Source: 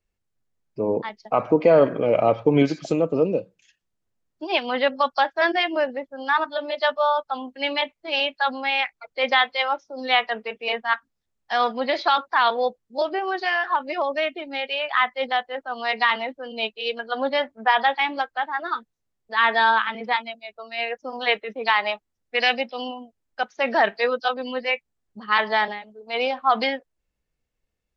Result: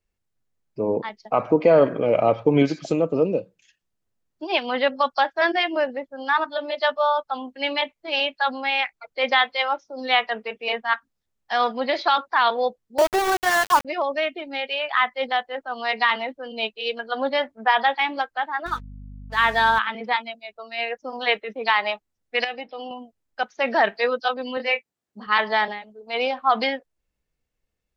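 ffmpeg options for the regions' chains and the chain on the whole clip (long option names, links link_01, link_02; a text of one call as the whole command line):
ffmpeg -i in.wav -filter_complex "[0:a]asettb=1/sr,asplit=3[link_01][link_02][link_03];[link_01]atrim=end=12.984[link_04];[link_02]atrim=start=12.98:end=13.85,asetpts=PTS-STARTPTS,afade=type=in:duration=0.004:curve=qsin,afade=type=out:start_time=0.866:duration=0.004:curve=qsin,lowpass=frequency=1800:width=0.5412,lowpass=frequency=1800:width=1.3066,acontrast=41,aeval=exprs='val(0)*gte(abs(val(0)),0.0891)':channel_layout=same[link_05];[link_03]atrim=start=13.846[link_06];[link_04][link_05]acrossfade=duration=0.004:curve1=hsin:curve2=qsin[link_07];[link_07][link_06]acrossfade=duration=0.004:curve1=qsin:curve2=hsin,asettb=1/sr,asplit=3[link_08][link_09][link_10];[link_08]atrim=end=18.664[link_11];[link_09]atrim=start=18.66:end=19.79,asetpts=PTS-STARTPTS,afade=type=in:duration=0.004:curve=qsin,afade=type=out:start_time=1.126:duration=0.004:curve=qsin,aeval=exprs='sgn(val(0))*max(abs(val(0))-0.0075,0)':channel_layout=same,aeval=exprs='val(0)+0.0126*(sin(2*PI*50*n/s)+sin(2*PI*2*50*n/s)/2+sin(2*PI*3*50*n/s)/3+sin(2*PI*4*50*n/s)/4+sin(2*PI*5*50*n/s)/5)':channel_layout=same[link_12];[link_10]atrim=start=19.786[link_13];[link_11][link_12]acrossfade=duration=0.004:curve1=hsin:curve2=qsin[link_14];[link_14][link_13]acrossfade=duration=0.004:curve1=qsin:curve2=hsin,asettb=1/sr,asplit=3[link_15][link_16][link_17];[link_15]atrim=end=22.444[link_18];[link_16]atrim=start=22.44:end=22.91,asetpts=PTS-STARTPTS,afade=type=in:duration=0.004:curve=qsin,afade=type=out:start_time=0.466:duration=0.004:curve=qsin,lowpass=frequency=2000:poles=1,aecho=1:1:6.4:0.51,atrim=end_sample=20727,acompressor=threshold=-33dB:ratio=2:attack=3.2:release=140:knee=1:detection=peak[link_19];[link_17]atrim=start=22.906[link_20];[link_18][link_19]acrossfade=duration=0.004:curve1=hsin:curve2=qsin[link_21];[link_21][link_20]acrossfade=duration=0.004:curve1=qsin:curve2=hsin,asettb=1/sr,asplit=3[link_22][link_23][link_24];[link_22]atrim=end=24.574[link_25];[link_23]atrim=start=24.57:end=25.27,asetpts=PTS-STARTPTS,afade=type=in:duration=0.004:curve=qsin,afade=type=out:start_time=0.696:duration=0.004:curve=qsin,highpass=160,asplit=2[link_26][link_27];[link_27]adelay=25,volume=-6dB[link_28];[link_26][link_28]amix=inputs=2:normalize=0,atrim=end_sample=30870[link_29];[link_24]atrim=start=25.266[link_30];[link_25][link_29]acrossfade=duration=0.004:curve1=hsin:curve2=qsin[link_31];[link_31][link_30]acrossfade=duration=0.004:curve1=qsin:curve2=hsin" out.wav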